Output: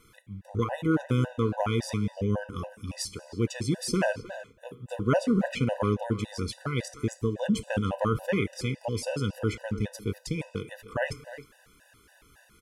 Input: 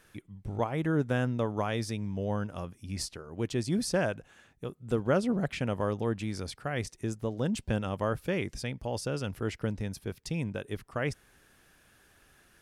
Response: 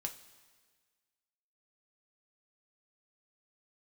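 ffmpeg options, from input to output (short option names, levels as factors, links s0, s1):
-filter_complex "[0:a]asplit=2[s0][s1];[s1]adelay=310,highpass=300,lowpass=3400,asoftclip=type=hard:threshold=0.0631,volume=0.224[s2];[s0][s2]amix=inputs=2:normalize=0,asplit=2[s3][s4];[1:a]atrim=start_sample=2205,afade=t=out:st=0.4:d=0.01,atrim=end_sample=18081[s5];[s4][s5]afir=irnorm=-1:irlink=0,volume=1.19[s6];[s3][s6]amix=inputs=2:normalize=0,afftfilt=real='re*gt(sin(2*PI*3.6*pts/sr)*(1-2*mod(floor(b*sr/1024/500),2)),0)':imag='im*gt(sin(2*PI*3.6*pts/sr)*(1-2*mod(floor(b*sr/1024/500),2)),0)':win_size=1024:overlap=0.75"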